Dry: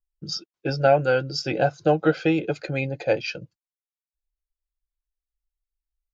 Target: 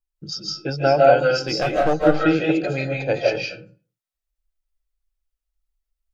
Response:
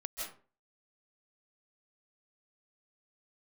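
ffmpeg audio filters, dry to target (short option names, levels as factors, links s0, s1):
-filter_complex "[0:a]asettb=1/sr,asplit=3[s0][s1][s2];[s0]atrim=end=1.364[s3];[s1]atrim=start=1.36:end=1.94,asetpts=PTS-STARTPTS,afade=t=in:d=0.004:c=qsin,afade=t=out:st=0.576:d=0.004:c=qsin,aeval=exprs='clip(val(0),-1,0.126)':c=same[s4];[s2]atrim=start=1.936[s5];[s3][s4]acrossfade=d=0.004:c1=hsin:c2=qsin[s6];[s6][s5]acrossfade=d=0.004:c1=qsin:c2=hsin[s7];[1:a]atrim=start_sample=2205[s8];[s7][s8]afir=irnorm=-1:irlink=0,volume=1.5"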